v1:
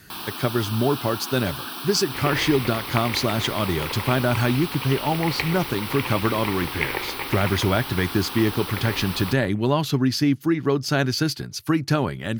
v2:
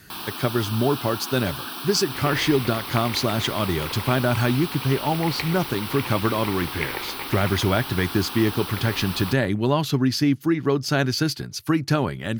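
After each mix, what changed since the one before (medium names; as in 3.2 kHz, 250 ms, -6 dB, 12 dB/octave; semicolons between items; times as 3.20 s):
second sound -4.0 dB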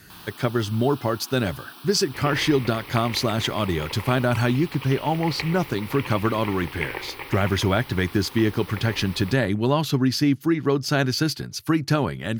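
first sound -11.0 dB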